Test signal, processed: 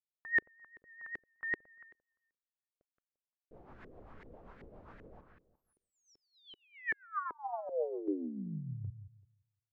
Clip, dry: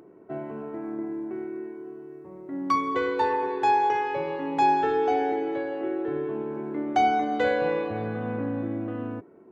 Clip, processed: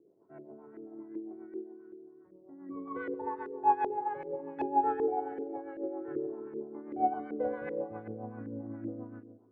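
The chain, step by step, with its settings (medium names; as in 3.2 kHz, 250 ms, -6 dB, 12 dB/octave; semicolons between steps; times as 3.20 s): filtered feedback delay 173 ms, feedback 26%, low-pass 3.2 kHz, level -6 dB; rotary cabinet horn 7.5 Hz; LFO low-pass saw up 2.6 Hz 380–1900 Hz; upward expansion 1.5:1, over -33 dBFS; trim -7 dB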